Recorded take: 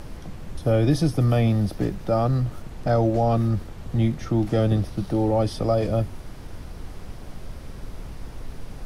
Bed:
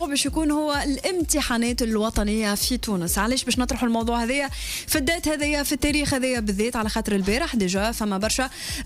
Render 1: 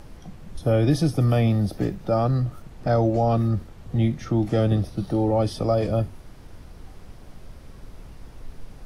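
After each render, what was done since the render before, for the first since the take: noise print and reduce 6 dB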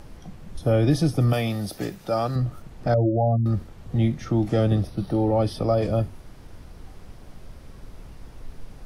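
1.33–2.36 tilt +2.5 dB/oct; 2.94–3.46 spectral contrast raised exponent 2.3; 4.87–5.82 bell 7100 Hz -13 dB 0.32 oct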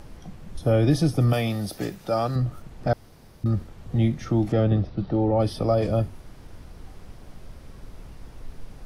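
2.93–3.44 room tone; 4.52–5.4 air absorption 190 m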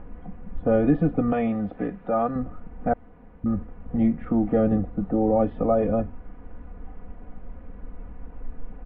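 Bessel low-pass 1400 Hz, order 8; comb 4.1 ms, depth 81%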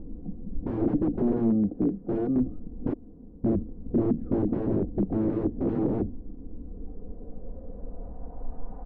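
wrapped overs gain 19 dB; low-pass sweep 330 Hz -> 840 Hz, 6.52–8.71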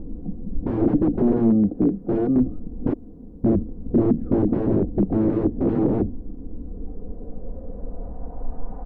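gain +6 dB

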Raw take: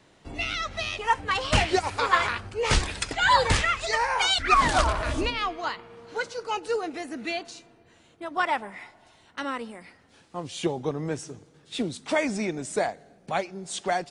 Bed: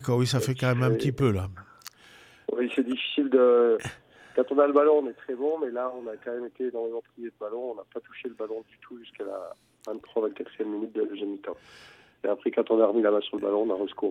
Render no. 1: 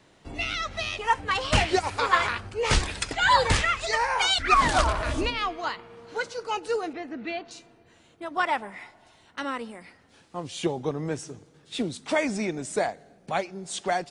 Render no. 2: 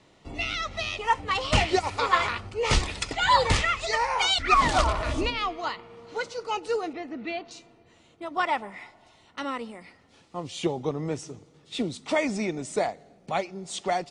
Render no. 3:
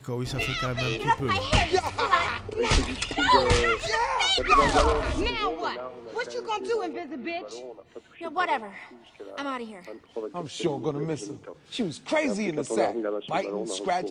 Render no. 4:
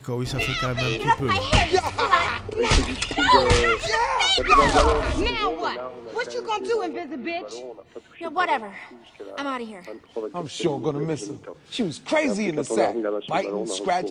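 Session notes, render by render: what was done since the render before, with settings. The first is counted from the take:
6.93–7.51 air absorption 250 m
LPF 8400 Hz 12 dB/oct; notch 1600 Hz, Q 6.4
add bed -7 dB
gain +3.5 dB

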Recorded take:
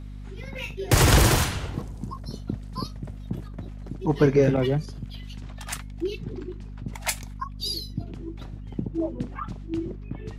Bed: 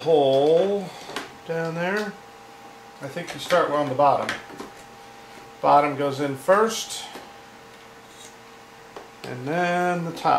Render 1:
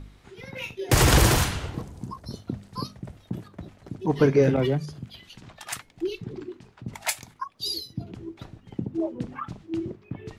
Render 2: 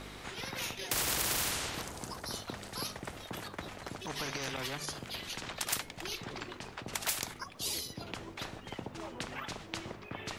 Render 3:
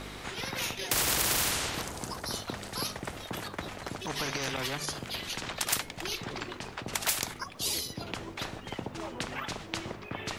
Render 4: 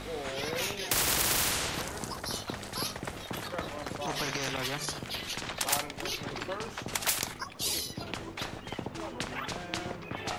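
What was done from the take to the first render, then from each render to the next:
de-hum 50 Hz, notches 5
limiter -16 dBFS, peak gain reduction 8.5 dB; spectral compressor 4:1
gain +4.5 dB
add bed -21 dB

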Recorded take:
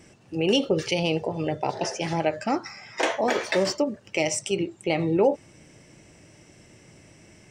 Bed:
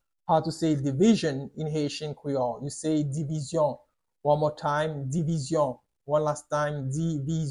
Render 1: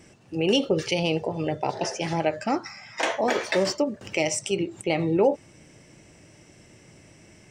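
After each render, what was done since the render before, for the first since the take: 2.67–3.07 bell 400 Hz -12 dB 0.52 oct; 4.01–4.82 upward compressor, threshold -28 dBFS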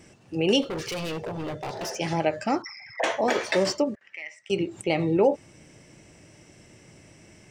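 0.62–1.96 overloaded stage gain 29 dB; 2.62–3.04 formant sharpening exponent 3; 3.95–4.5 band-pass 1900 Hz, Q 6.8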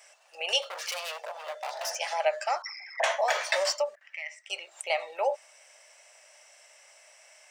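elliptic high-pass 600 Hz, stop band 50 dB; high shelf 6800 Hz +5.5 dB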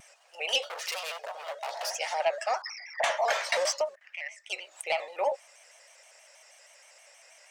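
soft clip -14.5 dBFS, distortion -24 dB; shaped vibrato square 6.3 Hz, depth 100 cents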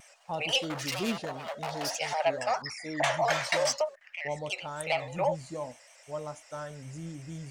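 add bed -12.5 dB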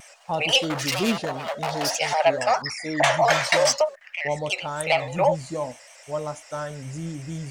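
gain +8 dB

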